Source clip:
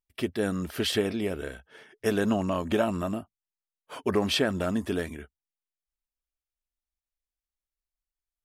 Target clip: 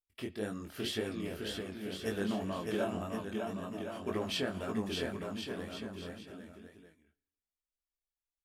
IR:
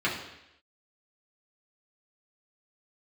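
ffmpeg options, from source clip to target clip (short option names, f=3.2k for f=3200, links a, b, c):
-filter_complex "[0:a]aecho=1:1:610|1068|1411|1668|1861:0.631|0.398|0.251|0.158|0.1,flanger=delay=17.5:depth=6.3:speed=1.9,asplit=2[a][b];[1:a]atrim=start_sample=2205,highshelf=f=3.1k:g=11.5[c];[b][c]afir=irnorm=-1:irlink=0,volume=-30dB[d];[a][d]amix=inputs=2:normalize=0,volume=-7dB"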